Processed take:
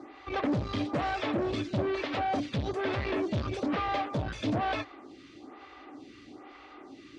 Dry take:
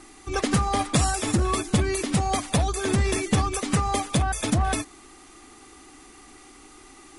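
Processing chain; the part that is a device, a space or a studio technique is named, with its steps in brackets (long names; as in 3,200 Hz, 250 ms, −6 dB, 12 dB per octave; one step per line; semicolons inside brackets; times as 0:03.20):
vibe pedal into a guitar amplifier (phaser with staggered stages 1.1 Hz; tube saturation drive 32 dB, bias 0.4; loudspeaker in its box 84–4,200 Hz, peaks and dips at 110 Hz +6 dB, 280 Hz +5 dB, 580 Hz +9 dB)
level +3.5 dB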